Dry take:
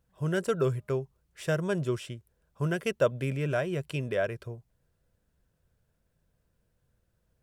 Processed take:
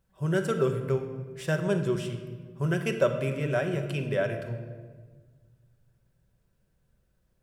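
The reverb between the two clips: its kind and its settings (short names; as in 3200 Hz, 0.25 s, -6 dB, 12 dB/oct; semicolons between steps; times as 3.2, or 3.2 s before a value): shoebox room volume 1500 m³, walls mixed, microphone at 1.1 m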